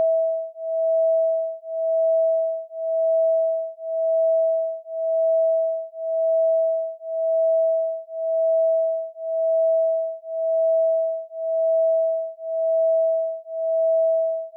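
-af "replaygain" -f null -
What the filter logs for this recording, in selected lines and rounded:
track_gain = +3.9 dB
track_peak = 0.119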